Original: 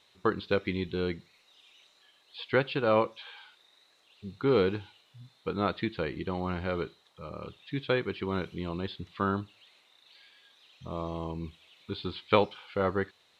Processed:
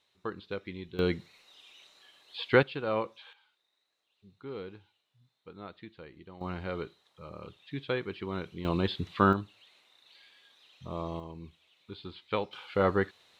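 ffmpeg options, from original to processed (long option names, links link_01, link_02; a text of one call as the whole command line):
ffmpeg -i in.wav -af "asetnsamples=nb_out_samples=441:pad=0,asendcmd='0.99 volume volume 3.5dB;2.63 volume volume -6dB;3.33 volume volume -16dB;6.41 volume volume -4dB;8.65 volume volume 6dB;9.33 volume volume -1dB;11.2 volume volume -8dB;12.53 volume volume 2.5dB',volume=-9.5dB" out.wav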